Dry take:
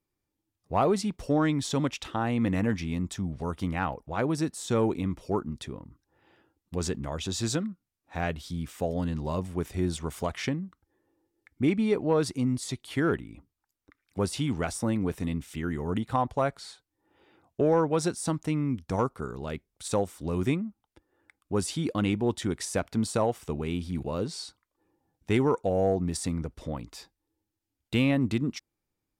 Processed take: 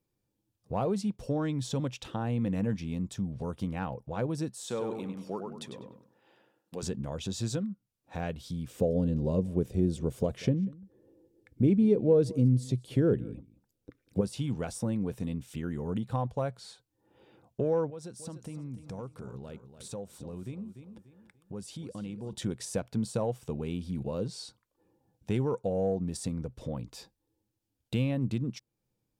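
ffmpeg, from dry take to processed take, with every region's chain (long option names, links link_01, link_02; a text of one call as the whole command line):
ffmpeg -i in.wav -filter_complex "[0:a]asettb=1/sr,asplit=3[link_01][link_02][link_03];[link_01]atrim=end=4.504[link_04];[link_02]atrim=start=4.5:end=6.83,asetpts=PTS-STARTPTS,afade=type=in:duration=0.004:curve=qsin,afade=type=out:start_time=2.326:duration=0.004:curve=qsin,highpass=170,lowshelf=frequency=380:gain=-10.5,asplit=2[link_05][link_06];[link_06]adelay=99,lowpass=frequency=3200:poles=1,volume=-4.5dB,asplit=2[link_07][link_08];[link_08]adelay=99,lowpass=frequency=3200:poles=1,volume=0.31,asplit=2[link_09][link_10];[link_10]adelay=99,lowpass=frequency=3200:poles=1,volume=0.31,asplit=2[link_11][link_12];[link_12]adelay=99,lowpass=frequency=3200:poles=1,volume=0.31[link_13];[link_05][link_07][link_09][link_11][link_13]amix=inputs=5:normalize=0,atrim=end_sample=102753[link_14];[link_03]atrim=start=6.826[link_15];[link_04][link_14]acrossfade=duration=0.004:curve1=hsin:curve2=qsin[link_16];[link_16][link_15]acrossfade=duration=0.004:curve1=qsin:curve2=hsin,asettb=1/sr,asplit=3[link_17][link_18][link_19];[link_17]atrim=end=8.704[link_20];[link_18]atrim=start=8.7:end=14.21,asetpts=PTS-STARTPTS,afade=type=in:duration=0.004:curve=qsin,afade=type=out:start_time=5.506:duration=0.004:curve=qsin,lowshelf=frequency=660:width_type=q:width=1.5:gain=8,aecho=1:1:189:0.0631,atrim=end_sample=242991[link_21];[link_19]atrim=start=14.206[link_22];[link_20][link_21]acrossfade=duration=0.004:curve1=hsin:curve2=qsin[link_23];[link_23][link_22]acrossfade=duration=0.004:curve1=qsin:curve2=hsin,asettb=1/sr,asplit=3[link_24][link_25][link_26];[link_24]atrim=end=17.904[link_27];[link_25]atrim=start=17.9:end=22.33,asetpts=PTS-STARTPTS,afade=type=in:duration=0.004:curve=qsin,afade=type=out:start_time=4.426:duration=0.004:curve=qsin,acompressor=threshold=-49dB:ratio=2:attack=3.2:release=140:knee=1:detection=peak,aecho=1:1:293|586|879:0.237|0.0759|0.0243,atrim=end_sample=195363[link_28];[link_26]atrim=start=22.326[link_29];[link_27][link_28]acrossfade=duration=0.004:curve1=hsin:curve2=qsin[link_30];[link_30][link_29]acrossfade=duration=0.004:curve1=qsin:curve2=hsin,equalizer=frequency=125:width_type=o:width=0.33:gain=11,equalizer=frequency=200:width_type=o:width=0.33:gain=8,equalizer=frequency=500:width_type=o:width=0.33:gain=7,equalizer=frequency=1250:width_type=o:width=0.33:gain=-4,equalizer=frequency=2000:width_type=o:width=0.33:gain=-6,acompressor=threshold=-42dB:ratio=1.5" out.wav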